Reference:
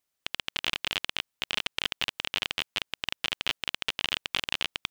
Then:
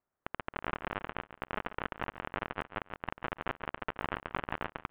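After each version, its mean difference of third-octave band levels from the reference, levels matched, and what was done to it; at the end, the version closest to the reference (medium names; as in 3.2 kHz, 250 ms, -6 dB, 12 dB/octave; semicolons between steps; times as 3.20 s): 14.5 dB: low-pass 1.5 kHz 24 dB/octave; feedback delay 141 ms, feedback 24%, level -13 dB; trim +3.5 dB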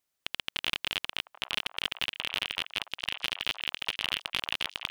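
2.0 dB: saturation -11.5 dBFS, distortion -18 dB; on a send: repeats whose band climbs or falls 785 ms, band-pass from 890 Hz, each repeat 1.4 oct, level -6 dB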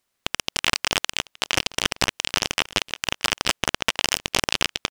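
4.5 dB: on a send: delay 870 ms -20.5 dB; on the sum: delay time shaken by noise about 2.2 kHz, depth 0.043 ms; trim +7.5 dB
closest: second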